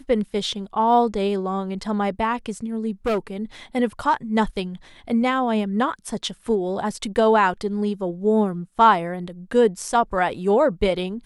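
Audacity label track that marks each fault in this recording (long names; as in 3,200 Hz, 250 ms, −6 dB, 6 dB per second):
3.060000	3.180000	clipping −18 dBFS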